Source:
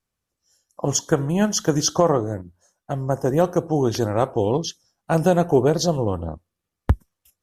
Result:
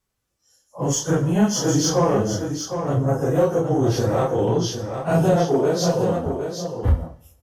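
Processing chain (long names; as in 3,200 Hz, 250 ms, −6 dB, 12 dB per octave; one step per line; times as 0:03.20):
random phases in long frames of 100 ms
0:05.36–0:06.26: high-pass filter 210 Hz 12 dB per octave
in parallel at +1 dB: downward compressor, threshold −25 dBFS, peak gain reduction 13 dB
on the sum: coupled-rooms reverb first 0.7 s, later 2.5 s, from −26 dB, DRR 13.5 dB
soft clipping −8.5 dBFS, distortion −18 dB
on a send: single-tap delay 760 ms −7.5 dB
on the sum: harmonic and percussive parts rebalanced percussive −6 dB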